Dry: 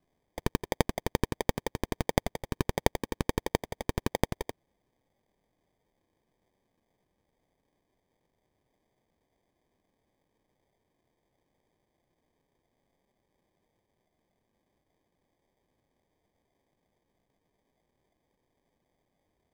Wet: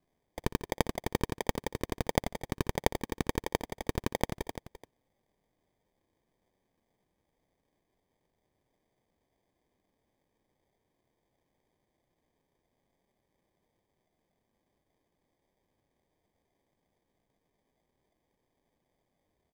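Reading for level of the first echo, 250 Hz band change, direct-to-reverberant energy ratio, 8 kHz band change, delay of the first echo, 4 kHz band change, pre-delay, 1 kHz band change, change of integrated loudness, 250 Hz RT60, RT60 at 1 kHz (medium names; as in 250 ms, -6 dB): -17.0 dB, -2.0 dB, no reverb, -1.5 dB, 60 ms, -2.0 dB, no reverb, -1.5 dB, -2.0 dB, no reverb, no reverb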